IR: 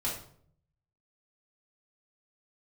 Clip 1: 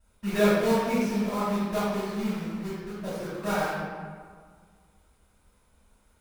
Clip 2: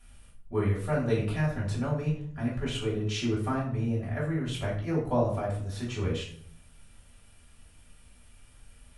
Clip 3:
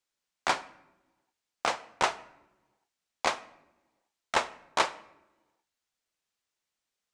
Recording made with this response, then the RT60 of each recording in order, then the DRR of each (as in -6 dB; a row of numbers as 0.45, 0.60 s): 2; 1.8 s, 0.60 s, not exponential; -14.0, -6.5, 14.0 dB